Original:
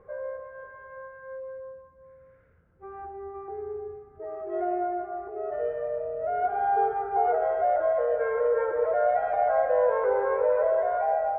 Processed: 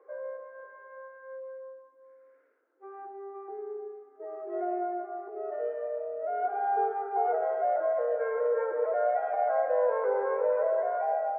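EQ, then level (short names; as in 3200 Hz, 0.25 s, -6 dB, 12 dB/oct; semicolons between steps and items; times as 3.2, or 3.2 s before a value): steep high-pass 270 Hz 96 dB/oct; air absorption 270 m; -2.5 dB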